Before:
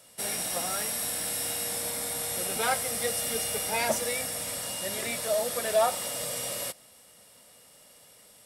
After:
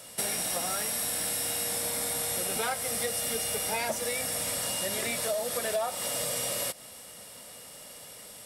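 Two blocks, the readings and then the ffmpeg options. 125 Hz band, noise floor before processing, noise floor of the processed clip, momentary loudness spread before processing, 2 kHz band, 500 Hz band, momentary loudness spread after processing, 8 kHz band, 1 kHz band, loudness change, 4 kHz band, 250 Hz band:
+0.5 dB, −56 dBFS, −47 dBFS, 5 LU, −1.0 dB, −2.5 dB, 16 LU, +0.5 dB, −3.0 dB, −0.5 dB, 0.0 dB, 0.0 dB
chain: -af "acompressor=threshold=-37dB:ratio=6,volume=8.5dB"

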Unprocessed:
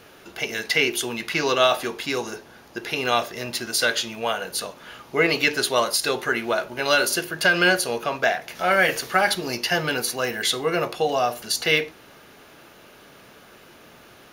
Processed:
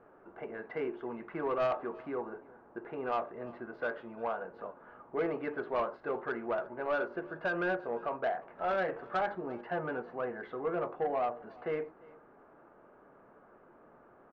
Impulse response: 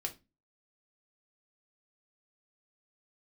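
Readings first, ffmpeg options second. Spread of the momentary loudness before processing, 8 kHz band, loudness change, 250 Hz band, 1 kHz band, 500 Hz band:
10 LU, below −40 dB, −13.5 dB, −10.5 dB, −10.5 dB, −9.5 dB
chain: -filter_complex "[0:a]lowpass=frequency=1300:width=0.5412,lowpass=frequency=1300:width=1.3066,equalizer=frequency=88:width_type=o:width=2.1:gain=-9.5,asoftclip=type=tanh:threshold=-17.5dB,asplit=2[link_01][link_02];[link_02]aecho=0:1:349:0.0708[link_03];[link_01][link_03]amix=inputs=2:normalize=0,volume=-7dB"

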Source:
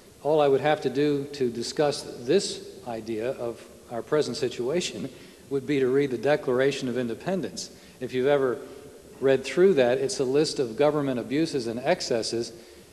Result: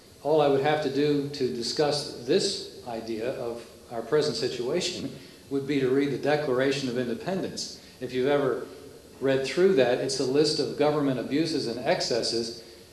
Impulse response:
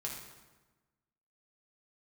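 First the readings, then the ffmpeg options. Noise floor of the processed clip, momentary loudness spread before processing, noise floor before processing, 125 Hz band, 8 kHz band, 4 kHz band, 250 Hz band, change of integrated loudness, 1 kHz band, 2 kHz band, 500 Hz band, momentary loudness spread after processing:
−50 dBFS, 14 LU, −50 dBFS, 0.0 dB, 0.0 dB, +3.0 dB, −0.5 dB, −1.0 dB, −0.5 dB, −0.5 dB, −1.5 dB, 13 LU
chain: -filter_complex "[0:a]asplit=2[link_01][link_02];[link_02]equalizer=frequency=4500:width_type=o:width=0.4:gain=9.5[link_03];[1:a]atrim=start_sample=2205,atrim=end_sample=3969,asetrate=30429,aresample=44100[link_04];[link_03][link_04]afir=irnorm=-1:irlink=0,volume=0.5dB[link_05];[link_01][link_05]amix=inputs=2:normalize=0,volume=-7dB"

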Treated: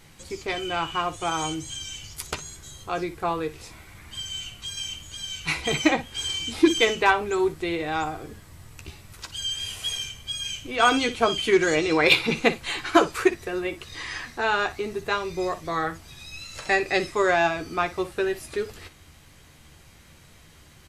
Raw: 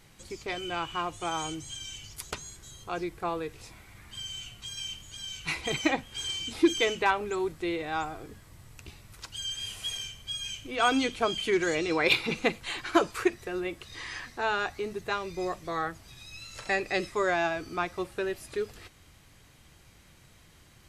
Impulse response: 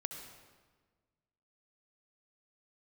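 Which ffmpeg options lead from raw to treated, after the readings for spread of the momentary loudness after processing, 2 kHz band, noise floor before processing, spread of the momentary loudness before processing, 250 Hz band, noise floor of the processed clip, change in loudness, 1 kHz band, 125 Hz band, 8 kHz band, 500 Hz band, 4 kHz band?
16 LU, +6.0 dB, −57 dBFS, 15 LU, +5.0 dB, −52 dBFS, +5.5 dB, +5.5 dB, +6.0 dB, +5.5 dB, +6.0 dB, +5.5 dB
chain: -af "aecho=1:1:13|59:0.355|0.178,aeval=exprs='0.282*(cos(1*acos(clip(val(0)/0.282,-1,1)))-cos(1*PI/2))+0.00398*(cos(7*acos(clip(val(0)/0.282,-1,1)))-cos(7*PI/2))':channel_layout=same,volume=5.5dB"

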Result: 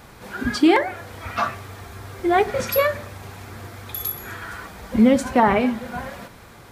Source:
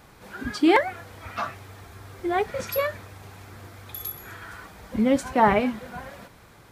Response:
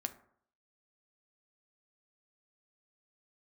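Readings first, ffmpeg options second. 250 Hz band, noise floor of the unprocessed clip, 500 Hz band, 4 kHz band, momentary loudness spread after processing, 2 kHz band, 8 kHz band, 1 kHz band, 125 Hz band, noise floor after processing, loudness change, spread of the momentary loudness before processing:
+5.5 dB, −52 dBFS, +4.0 dB, +4.5 dB, 21 LU, +3.5 dB, +5.5 dB, +3.0 dB, +5.0 dB, −45 dBFS, +4.0 dB, 24 LU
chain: -filter_complex "[0:a]alimiter=limit=-12.5dB:level=0:latency=1:release=407,asplit=2[link_01][link_02];[1:a]atrim=start_sample=2205[link_03];[link_02][link_03]afir=irnorm=-1:irlink=0,volume=2dB[link_04];[link_01][link_04]amix=inputs=2:normalize=0"

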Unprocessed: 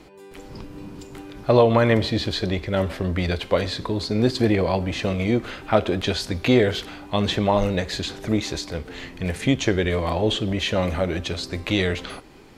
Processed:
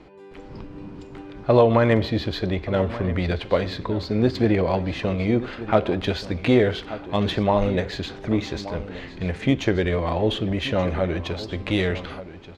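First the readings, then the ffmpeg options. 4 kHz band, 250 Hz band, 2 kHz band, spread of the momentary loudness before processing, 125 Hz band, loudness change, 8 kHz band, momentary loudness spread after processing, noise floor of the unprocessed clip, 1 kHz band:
−4.5 dB, 0.0 dB, −1.5 dB, 15 LU, 0.0 dB, −0.5 dB, below −10 dB, 13 LU, −44 dBFS, −0.5 dB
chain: -af "highshelf=frequency=4500:gain=-7.5,aecho=1:1:1179:0.188,adynamicsmooth=sensitivity=1.5:basefreq=5600"

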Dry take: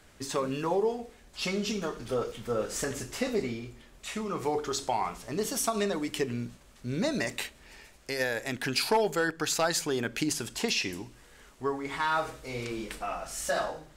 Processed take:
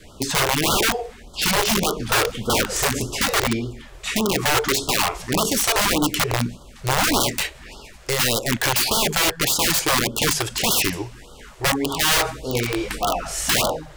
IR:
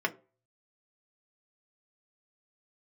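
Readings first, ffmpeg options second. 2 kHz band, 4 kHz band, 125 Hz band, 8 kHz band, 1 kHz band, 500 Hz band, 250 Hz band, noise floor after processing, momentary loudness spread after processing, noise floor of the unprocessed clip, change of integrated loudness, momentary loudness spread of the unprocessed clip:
+11.5 dB, +14.5 dB, +11.5 dB, +13.5 dB, +9.5 dB, +5.5 dB, +8.0 dB, −44 dBFS, 8 LU, −56 dBFS, +11.0 dB, 10 LU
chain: -af "adynamicequalizer=threshold=0.00282:dfrequency=1300:dqfactor=4.2:tfrequency=1300:tqfactor=4.2:attack=5:release=100:ratio=0.375:range=2:mode=cutabove:tftype=bell,acontrast=72,highshelf=frequency=5400:gain=-6,aeval=exprs='(mod(10*val(0)+1,2)-1)/10':channel_layout=same,afftfilt=real='re*(1-between(b*sr/1024,200*pow(2100/200,0.5+0.5*sin(2*PI*1.7*pts/sr))/1.41,200*pow(2100/200,0.5+0.5*sin(2*PI*1.7*pts/sr))*1.41))':imag='im*(1-between(b*sr/1024,200*pow(2100/200,0.5+0.5*sin(2*PI*1.7*pts/sr))/1.41,200*pow(2100/200,0.5+0.5*sin(2*PI*1.7*pts/sr))*1.41))':win_size=1024:overlap=0.75,volume=7dB"

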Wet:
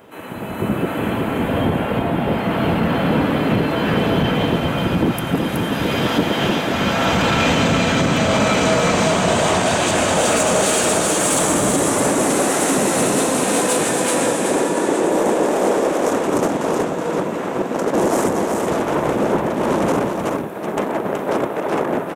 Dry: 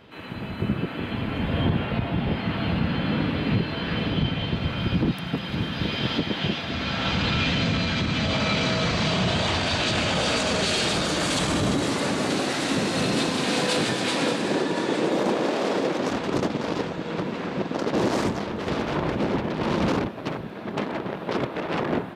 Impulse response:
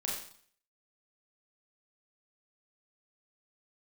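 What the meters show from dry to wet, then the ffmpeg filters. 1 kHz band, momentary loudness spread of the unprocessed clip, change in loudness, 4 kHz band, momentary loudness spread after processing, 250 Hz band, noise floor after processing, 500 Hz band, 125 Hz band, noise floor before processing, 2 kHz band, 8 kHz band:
+9.0 dB, 7 LU, +7.0 dB, +1.5 dB, 6 LU, +6.5 dB, −25 dBFS, +9.5 dB, +3.5 dB, −34 dBFS, +5.5 dB, +14.0 dB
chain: -filter_complex "[0:a]equalizer=frequency=630:width=0.31:gain=13.5,aexciter=amount=7.1:drive=8.6:freq=6600,aeval=exprs='1.06*(cos(1*acos(clip(val(0)/1.06,-1,1)))-cos(1*PI/2))+0.15*(cos(3*acos(clip(val(0)/1.06,-1,1)))-cos(3*PI/2))':channel_layout=same,dynaudnorm=framelen=110:gausssize=11:maxgain=11.5dB,asoftclip=type=tanh:threshold=-10.5dB,asplit=2[link_01][link_02];[link_02]aecho=0:1:373:0.562[link_03];[link_01][link_03]amix=inputs=2:normalize=0"

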